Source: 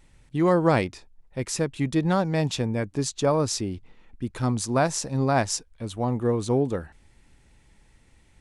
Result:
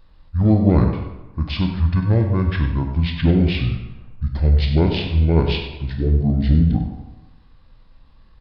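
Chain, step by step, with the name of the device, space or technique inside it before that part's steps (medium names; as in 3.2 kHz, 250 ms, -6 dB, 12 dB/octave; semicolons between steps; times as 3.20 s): monster voice (pitch shift -9 st; formant shift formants -4 st; bass shelf 230 Hz +7 dB; delay 96 ms -12 dB; reverberation RT60 1.1 s, pre-delay 19 ms, DRR 3.5 dB); trim +1 dB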